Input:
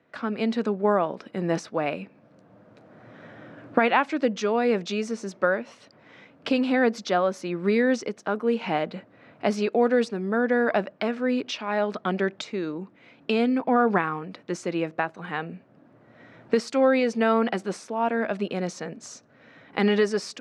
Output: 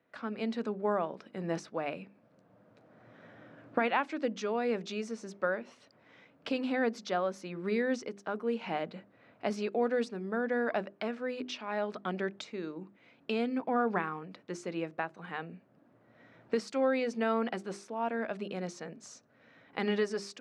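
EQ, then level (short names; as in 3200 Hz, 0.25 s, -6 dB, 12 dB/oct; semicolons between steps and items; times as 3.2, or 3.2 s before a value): notches 50/100/150/200/250/300/350/400 Hz; -8.5 dB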